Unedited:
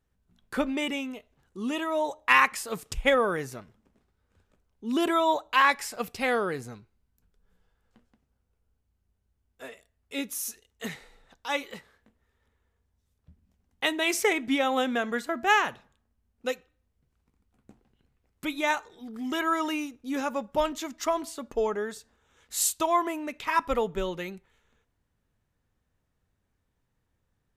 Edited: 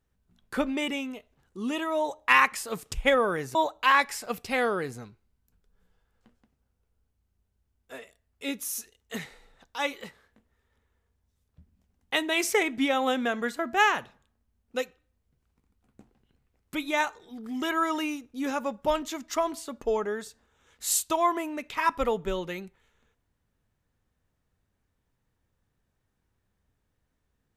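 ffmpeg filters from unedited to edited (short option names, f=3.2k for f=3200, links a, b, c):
-filter_complex "[0:a]asplit=2[a][b];[a]atrim=end=3.552[c];[b]atrim=start=5.248[d];[c][d]acrossfade=d=0.004:c1=hsin:c2=hsin"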